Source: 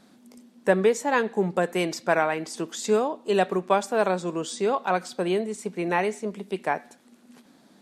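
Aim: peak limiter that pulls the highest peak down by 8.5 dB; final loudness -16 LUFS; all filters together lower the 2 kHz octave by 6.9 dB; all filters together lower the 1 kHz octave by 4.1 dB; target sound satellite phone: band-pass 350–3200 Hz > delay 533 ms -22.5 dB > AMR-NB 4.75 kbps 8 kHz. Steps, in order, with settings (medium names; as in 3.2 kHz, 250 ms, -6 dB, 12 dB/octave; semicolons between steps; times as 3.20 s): peaking EQ 1 kHz -4 dB; peaking EQ 2 kHz -7 dB; peak limiter -18 dBFS; band-pass 350–3200 Hz; delay 533 ms -22.5 dB; trim +16.5 dB; AMR-NB 4.75 kbps 8 kHz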